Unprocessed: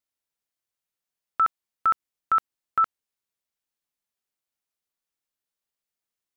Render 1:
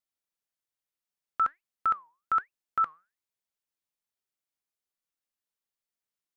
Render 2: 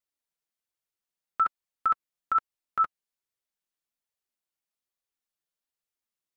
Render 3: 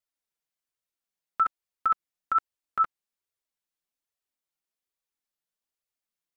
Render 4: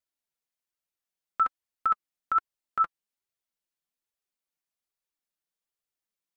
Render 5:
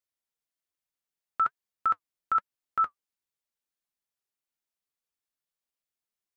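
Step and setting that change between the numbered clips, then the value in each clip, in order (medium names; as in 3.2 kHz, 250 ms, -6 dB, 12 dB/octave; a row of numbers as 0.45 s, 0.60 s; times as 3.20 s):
flange, regen: +89%, -18%, +2%, +27%, -62%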